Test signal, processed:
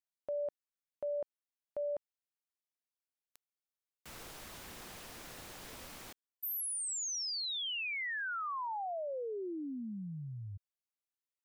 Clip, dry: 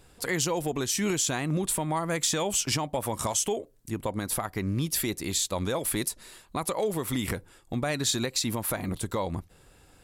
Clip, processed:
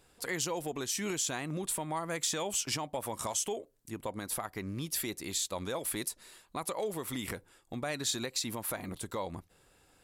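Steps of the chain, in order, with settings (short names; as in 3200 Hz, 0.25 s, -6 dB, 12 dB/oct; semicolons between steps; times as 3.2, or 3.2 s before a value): low shelf 200 Hz -7.5 dB; gain -5.5 dB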